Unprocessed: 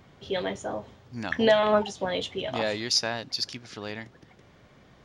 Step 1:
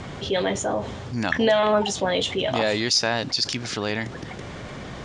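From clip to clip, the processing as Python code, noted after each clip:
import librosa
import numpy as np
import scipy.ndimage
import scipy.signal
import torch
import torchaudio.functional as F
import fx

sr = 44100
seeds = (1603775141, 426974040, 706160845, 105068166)

y = scipy.signal.sosfilt(scipy.signal.butter(16, 10000.0, 'lowpass', fs=sr, output='sos'), x)
y = fx.peak_eq(y, sr, hz=7800.0, db=3.5, octaves=0.46)
y = fx.env_flatten(y, sr, amount_pct=50)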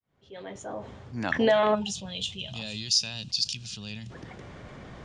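y = fx.fade_in_head(x, sr, length_s=1.37)
y = fx.spec_box(y, sr, start_s=1.75, length_s=2.35, low_hz=220.0, high_hz=2400.0, gain_db=-16)
y = fx.band_widen(y, sr, depth_pct=40)
y = y * 10.0 ** (-6.0 / 20.0)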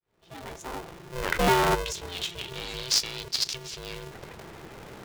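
y = x * np.sign(np.sin(2.0 * np.pi * 260.0 * np.arange(len(x)) / sr))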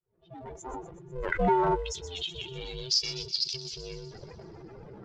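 y = fx.spec_expand(x, sr, power=2.2)
y = fx.echo_wet_highpass(y, sr, ms=124, feedback_pct=64, hz=3700.0, wet_db=-10.5)
y = y * 10.0 ** (-2.0 / 20.0)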